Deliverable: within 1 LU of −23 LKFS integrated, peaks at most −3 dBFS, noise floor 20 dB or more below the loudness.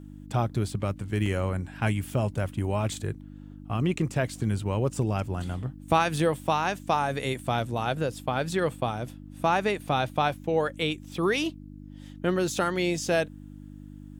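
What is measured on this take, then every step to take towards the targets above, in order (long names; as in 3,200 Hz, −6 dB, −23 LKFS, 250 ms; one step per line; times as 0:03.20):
number of dropouts 1; longest dropout 2.3 ms; mains hum 50 Hz; hum harmonics up to 300 Hz; level of the hum −41 dBFS; integrated loudness −28.0 LKFS; sample peak −9.0 dBFS; target loudness −23.0 LKFS
→ repair the gap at 0:01.26, 2.3 ms
hum removal 50 Hz, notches 6
level +5 dB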